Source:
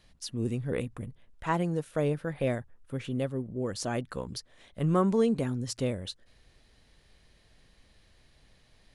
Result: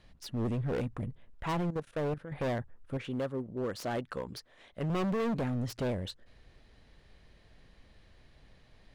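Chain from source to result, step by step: self-modulated delay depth 0.17 ms; LPF 2400 Hz 6 dB/oct; 1.61–2.32 level quantiser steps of 15 dB; 2.97–4.9 low shelf 270 Hz -10 dB; hard clip -32 dBFS, distortion -5 dB; gain +3 dB

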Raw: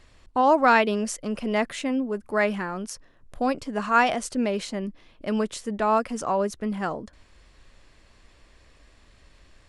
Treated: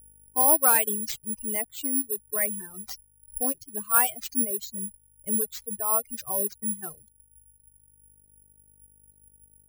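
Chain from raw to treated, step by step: per-bin expansion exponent 2; buzz 50 Hz, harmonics 15, -59 dBFS -8 dB/oct; careless resampling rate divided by 4×, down none, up zero stuff; reverb removal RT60 1.7 s; in parallel at -2 dB: compressor, threshold -29 dBFS, peak gain reduction 19.5 dB; on the sum: gain -5.5 dB

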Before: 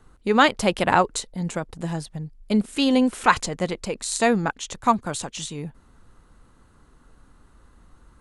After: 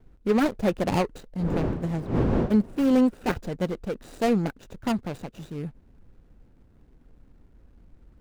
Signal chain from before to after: median filter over 41 samples; 1.38–2.99 wind noise 310 Hz -28 dBFS

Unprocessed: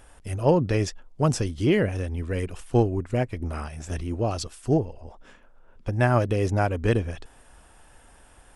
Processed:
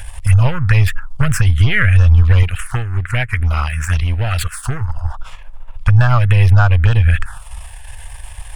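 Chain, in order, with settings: half-wave gain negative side -7 dB; compressor 16:1, threshold -27 dBFS, peak gain reduction 13 dB; EQ curve 100 Hz 0 dB, 320 Hz -27 dB, 620 Hz -16 dB, 1400 Hz +4 dB, 6000 Hz -10 dB, 9100 Hz -6 dB; envelope phaser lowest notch 190 Hz, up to 2100 Hz, full sweep at -30 dBFS; 2.43–4.81 low shelf 240 Hz -7.5 dB; maximiser +28 dB; gain -1 dB

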